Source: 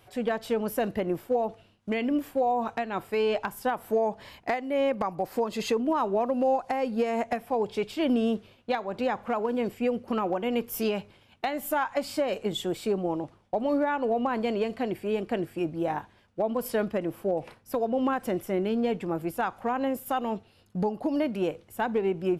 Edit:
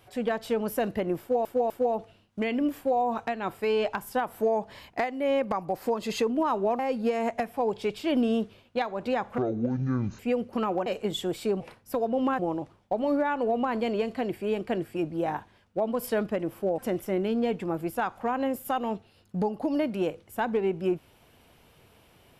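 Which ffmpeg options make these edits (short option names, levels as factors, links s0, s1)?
-filter_complex "[0:a]asplit=10[s0][s1][s2][s3][s4][s5][s6][s7][s8][s9];[s0]atrim=end=1.452[s10];[s1]atrim=start=1.198:end=1.452[s11];[s2]atrim=start=1.198:end=6.292[s12];[s3]atrim=start=6.718:end=9.314[s13];[s4]atrim=start=9.31:end=9.74,asetpts=PTS-STARTPTS,asetrate=23373,aresample=44100,atrim=end_sample=35779,asetpts=PTS-STARTPTS[s14];[s5]atrim=start=9.736:end=10.412[s15];[s6]atrim=start=12.268:end=13.012[s16];[s7]atrim=start=17.398:end=18.192[s17];[s8]atrim=start=13.008:end=17.402[s18];[s9]atrim=start=18.188[s19];[s10][s11]acrossfade=d=0.004:c1=hsin:c2=hsin[s20];[s20][s12]acrossfade=d=0.004:c1=hsin:c2=hsin[s21];[s21][s13]acrossfade=d=0.004:c1=hsin:c2=hsin[s22];[s22][s14]acrossfade=d=0.004:c1=hsin:c2=hsin[s23];[s23][s15]acrossfade=d=0.004:c1=hsin:c2=hsin[s24];[s24][s16]acrossfade=d=0.004:c1=hsin:c2=hsin[s25];[s25][s17]acrossfade=d=0.004:c1=hsin:c2=hsin[s26];[s26][s18]acrossfade=d=0.004:c1=hsin:c2=hsin[s27];[s27][s19]acrossfade=d=0.004:c1=hsin:c2=hsin"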